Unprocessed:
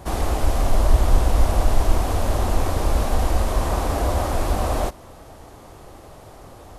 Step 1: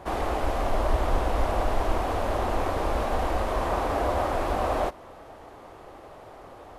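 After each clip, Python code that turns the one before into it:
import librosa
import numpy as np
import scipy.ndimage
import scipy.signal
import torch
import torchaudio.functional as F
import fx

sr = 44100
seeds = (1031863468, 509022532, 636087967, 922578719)

y = fx.bass_treble(x, sr, bass_db=-10, treble_db=-13)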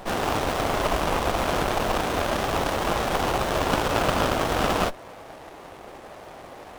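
y = fx.self_delay(x, sr, depth_ms=0.59)
y = fx.tilt_eq(y, sr, slope=3.0)
y = fx.running_max(y, sr, window=17)
y = F.gain(torch.from_numpy(y), 7.0).numpy()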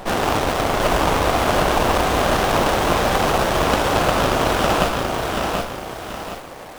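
y = fx.rider(x, sr, range_db=10, speed_s=0.5)
y = y + 10.0 ** (-8.5 / 20.0) * np.pad(y, (int(766 * sr / 1000.0), 0))[:len(y)]
y = fx.echo_crushed(y, sr, ms=732, feedback_pct=35, bits=7, wet_db=-4)
y = F.gain(torch.from_numpy(y), 4.5).numpy()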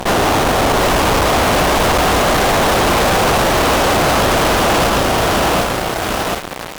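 y = fx.fuzz(x, sr, gain_db=30.0, gate_db=-34.0)
y = F.gain(torch.from_numpy(y), 1.5).numpy()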